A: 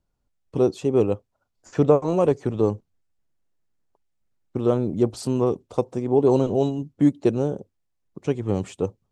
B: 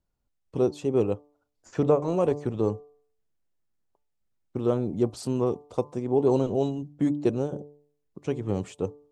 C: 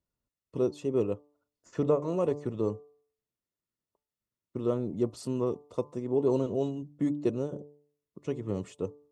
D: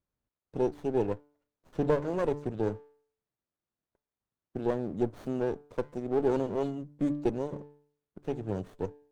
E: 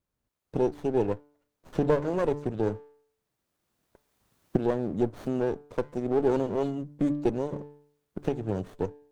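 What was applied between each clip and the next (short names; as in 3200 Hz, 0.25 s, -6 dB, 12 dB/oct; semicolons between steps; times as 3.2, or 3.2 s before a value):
de-hum 146.3 Hz, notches 8; gain -4 dB
notch comb 790 Hz; gain -4 dB
running maximum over 17 samples
recorder AGC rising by 12 dB/s; gain +2.5 dB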